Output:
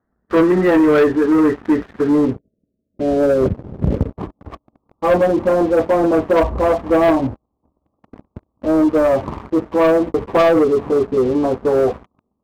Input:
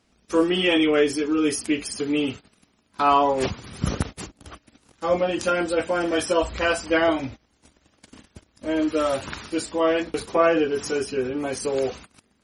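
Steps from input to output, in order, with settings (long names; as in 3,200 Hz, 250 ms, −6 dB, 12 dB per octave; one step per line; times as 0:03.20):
Butterworth low-pass 1,900 Hz 96 dB per octave, from 0:02.25 630 Hz, from 0:04.12 1,200 Hz
leveller curve on the samples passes 3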